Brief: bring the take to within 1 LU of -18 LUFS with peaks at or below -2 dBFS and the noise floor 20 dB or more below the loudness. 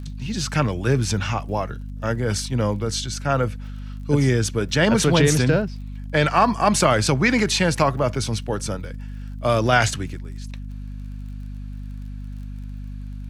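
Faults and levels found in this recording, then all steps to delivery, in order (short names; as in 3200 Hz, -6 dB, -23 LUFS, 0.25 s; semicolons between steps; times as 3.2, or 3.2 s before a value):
ticks 36/s; hum 50 Hz; harmonics up to 250 Hz; hum level -30 dBFS; loudness -21.0 LUFS; peak -3.5 dBFS; loudness target -18.0 LUFS
-> de-click; de-hum 50 Hz, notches 5; gain +3 dB; limiter -2 dBFS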